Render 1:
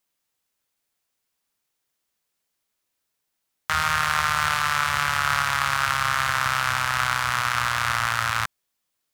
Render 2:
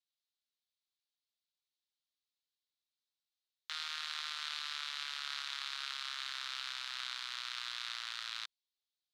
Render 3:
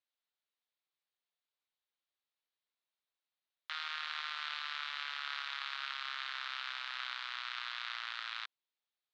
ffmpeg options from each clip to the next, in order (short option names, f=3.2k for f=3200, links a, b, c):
-af "bandpass=f=3.9k:t=q:w=3.5:csg=0,volume=-5.5dB"
-af "highpass=440,lowpass=2.7k,volume=4.5dB"